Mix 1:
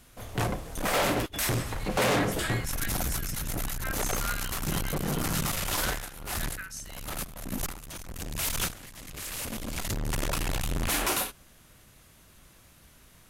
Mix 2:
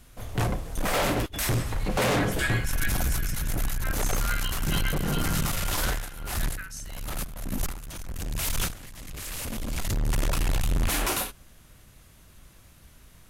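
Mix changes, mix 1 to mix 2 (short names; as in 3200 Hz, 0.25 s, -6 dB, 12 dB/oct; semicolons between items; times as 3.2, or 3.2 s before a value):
second sound +9.5 dB; master: add low shelf 110 Hz +8 dB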